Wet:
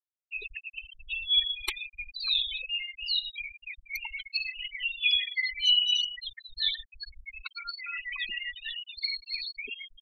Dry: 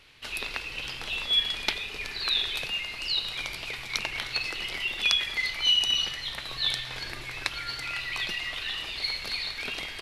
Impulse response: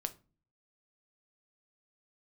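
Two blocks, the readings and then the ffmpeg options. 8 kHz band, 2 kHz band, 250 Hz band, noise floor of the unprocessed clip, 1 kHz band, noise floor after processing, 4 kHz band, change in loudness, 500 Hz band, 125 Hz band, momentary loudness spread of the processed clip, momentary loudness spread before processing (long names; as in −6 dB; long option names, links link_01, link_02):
−9.5 dB, −3.0 dB, below −15 dB, −39 dBFS, −10.5 dB, −81 dBFS, −1.0 dB, −1.0 dB, below −15 dB, below −15 dB, 15 LU, 10 LU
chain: -af "aeval=exprs='(mod(4.47*val(0)+1,2)-1)/4.47':channel_layout=same,aeval=exprs='0.224*(cos(1*acos(clip(val(0)/0.224,-1,1)))-cos(1*PI/2))+0.0126*(cos(4*acos(clip(val(0)/0.224,-1,1)))-cos(4*PI/2))+0.00708*(cos(6*acos(clip(val(0)/0.224,-1,1)))-cos(6*PI/2))':channel_layout=same,afftfilt=real='re*gte(hypot(re,im),0.0794)':imag='im*gte(hypot(re,im),0.0794)':win_size=1024:overlap=0.75"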